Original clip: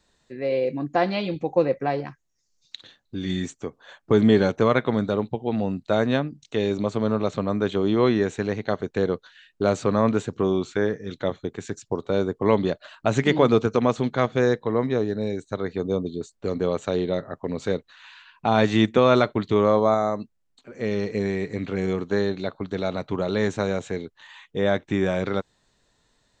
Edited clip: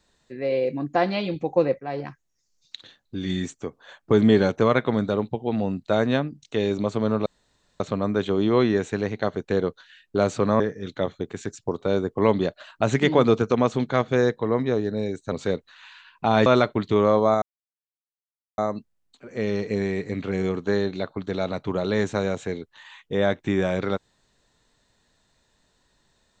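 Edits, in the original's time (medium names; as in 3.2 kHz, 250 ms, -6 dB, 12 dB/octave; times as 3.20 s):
1.80–2.05 s: fade in, from -16 dB
7.26 s: insert room tone 0.54 s
10.06–10.84 s: delete
15.56–17.53 s: delete
18.67–19.06 s: delete
20.02 s: insert silence 1.16 s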